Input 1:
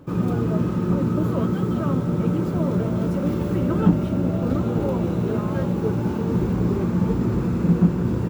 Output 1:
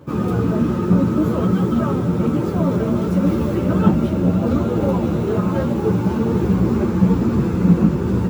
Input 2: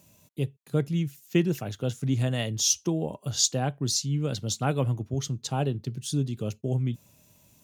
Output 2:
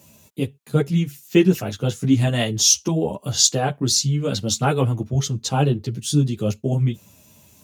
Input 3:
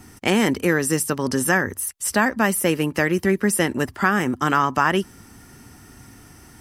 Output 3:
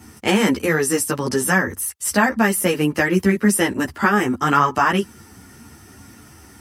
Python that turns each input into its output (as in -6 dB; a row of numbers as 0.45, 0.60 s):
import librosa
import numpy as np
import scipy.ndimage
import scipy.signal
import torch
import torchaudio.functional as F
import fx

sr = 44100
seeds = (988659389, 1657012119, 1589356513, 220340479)

y = scipy.signal.sosfilt(scipy.signal.butter(2, 50.0, 'highpass', fs=sr, output='sos'), x)
y = fx.ensemble(y, sr)
y = librosa.util.normalize(y) * 10.0 ** (-1.5 / 20.0)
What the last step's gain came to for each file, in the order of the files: +8.0, +11.5, +5.0 dB